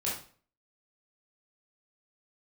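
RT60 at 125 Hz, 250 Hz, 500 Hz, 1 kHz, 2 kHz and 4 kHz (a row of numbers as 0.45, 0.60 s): 0.55, 0.50, 0.45, 0.45, 0.40, 0.40 s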